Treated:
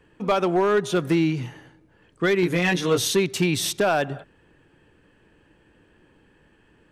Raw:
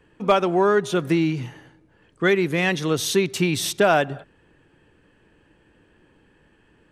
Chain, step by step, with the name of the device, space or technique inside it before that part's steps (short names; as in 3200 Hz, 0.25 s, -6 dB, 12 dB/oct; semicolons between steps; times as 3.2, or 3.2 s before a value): 2.41–3.08 doubler 17 ms -2.5 dB; limiter into clipper (limiter -10.5 dBFS, peak gain reduction 5.5 dB; hard clip -13.5 dBFS, distortion -21 dB)